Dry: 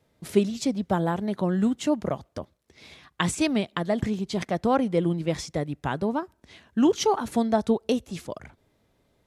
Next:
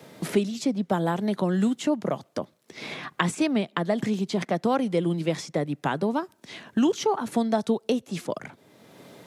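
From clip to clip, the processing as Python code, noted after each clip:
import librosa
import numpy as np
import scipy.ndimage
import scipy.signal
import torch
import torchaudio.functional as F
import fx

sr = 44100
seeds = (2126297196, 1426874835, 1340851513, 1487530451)

y = scipy.signal.sosfilt(scipy.signal.butter(4, 140.0, 'highpass', fs=sr, output='sos'), x)
y = fx.band_squash(y, sr, depth_pct=70)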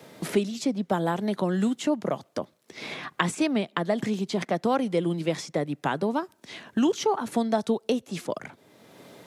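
y = fx.peak_eq(x, sr, hz=150.0, db=-2.5, octaves=1.5)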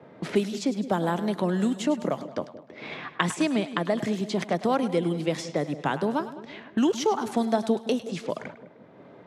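y = fx.echo_split(x, sr, split_hz=630.0, low_ms=172, high_ms=103, feedback_pct=52, wet_db=-13)
y = fx.env_lowpass(y, sr, base_hz=1300.0, full_db=-24.0)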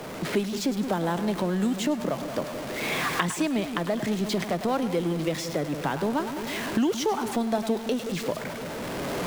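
y = x + 0.5 * 10.0 ** (-30.0 / 20.0) * np.sign(x)
y = fx.recorder_agc(y, sr, target_db=-13.5, rise_db_per_s=9.4, max_gain_db=30)
y = F.gain(torch.from_numpy(y), -3.5).numpy()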